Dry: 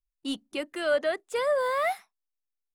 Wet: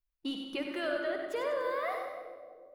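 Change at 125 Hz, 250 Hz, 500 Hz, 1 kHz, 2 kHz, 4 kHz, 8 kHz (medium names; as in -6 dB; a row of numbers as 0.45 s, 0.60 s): no reading, -1.5 dB, -6.5 dB, -7.0 dB, -6.0 dB, -4.5 dB, under -10 dB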